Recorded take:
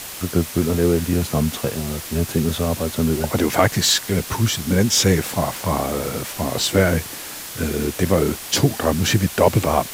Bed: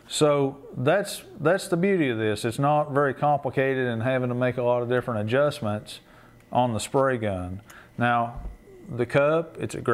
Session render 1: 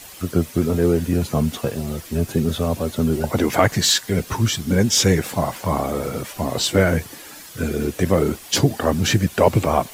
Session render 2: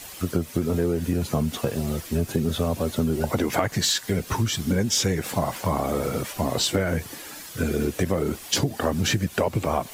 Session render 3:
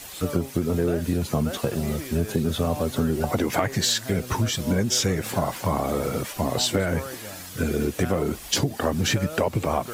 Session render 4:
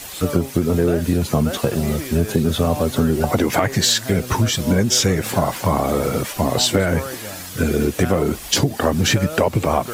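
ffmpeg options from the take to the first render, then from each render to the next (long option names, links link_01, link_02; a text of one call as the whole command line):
ffmpeg -i in.wav -af "afftdn=noise_reduction=10:noise_floor=-34" out.wav
ffmpeg -i in.wav -af "acompressor=threshold=-19dB:ratio=10" out.wav
ffmpeg -i in.wav -i bed.wav -filter_complex "[1:a]volume=-14dB[link_01];[0:a][link_01]amix=inputs=2:normalize=0" out.wav
ffmpeg -i in.wav -af "volume=6dB,alimiter=limit=-3dB:level=0:latency=1" out.wav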